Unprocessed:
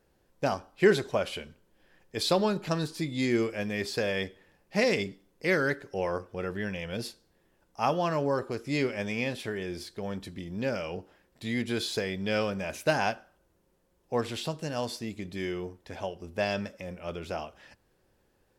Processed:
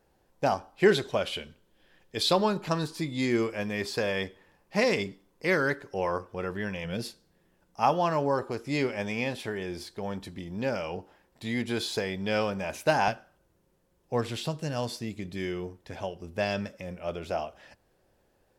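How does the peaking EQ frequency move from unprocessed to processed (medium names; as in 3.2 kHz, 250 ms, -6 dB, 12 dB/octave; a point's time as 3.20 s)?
peaking EQ +6 dB 0.58 oct
810 Hz
from 0.89 s 3.4 kHz
from 2.33 s 1 kHz
from 6.84 s 170 Hz
from 7.83 s 870 Hz
from 13.08 s 130 Hz
from 17.01 s 660 Hz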